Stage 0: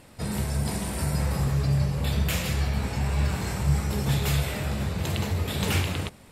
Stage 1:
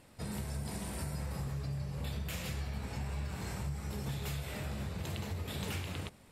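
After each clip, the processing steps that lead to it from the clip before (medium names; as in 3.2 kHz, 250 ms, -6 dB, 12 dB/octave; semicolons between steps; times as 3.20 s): compression, threshold -26 dBFS, peak gain reduction 9 dB; trim -8.5 dB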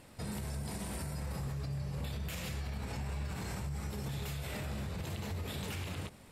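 peak limiter -34.5 dBFS, peak gain reduction 8.5 dB; trim +3.5 dB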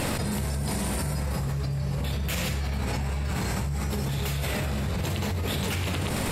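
level flattener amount 100%; trim +8 dB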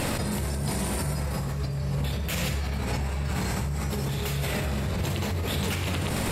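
reverberation RT60 2.2 s, pre-delay 58 ms, DRR 13 dB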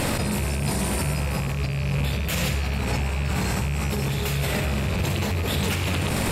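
rattle on loud lows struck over -27 dBFS, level -26 dBFS; trim +3.5 dB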